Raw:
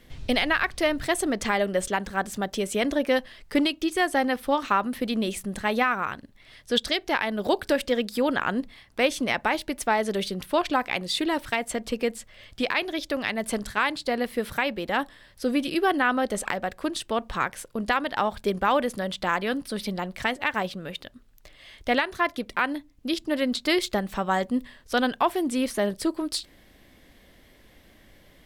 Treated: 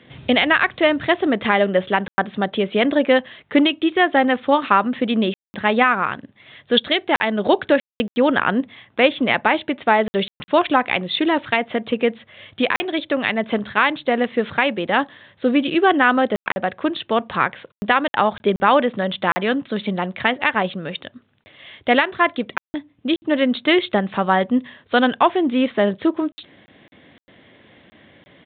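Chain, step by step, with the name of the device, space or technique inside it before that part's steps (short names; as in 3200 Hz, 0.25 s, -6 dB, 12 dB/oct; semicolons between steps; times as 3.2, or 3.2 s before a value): call with lost packets (HPF 100 Hz 24 dB/oct; downsampling 8000 Hz; packet loss bursts); gain +7.5 dB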